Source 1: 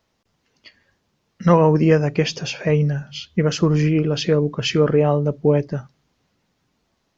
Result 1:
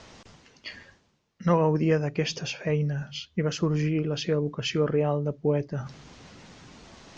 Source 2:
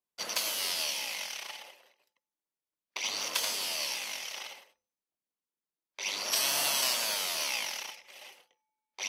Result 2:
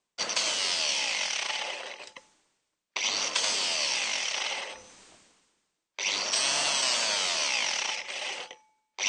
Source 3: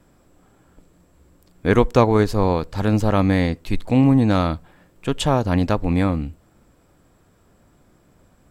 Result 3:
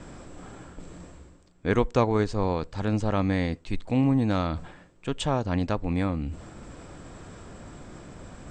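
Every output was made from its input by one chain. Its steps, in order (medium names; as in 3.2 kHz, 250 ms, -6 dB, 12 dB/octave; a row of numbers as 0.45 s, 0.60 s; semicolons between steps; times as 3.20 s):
Chebyshev low-pass 8.6 kHz, order 6; reverse; upward compressor, threshold -19 dBFS; reverse; normalise loudness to -27 LUFS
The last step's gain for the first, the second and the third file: -7.5 dB, -0.5 dB, -6.5 dB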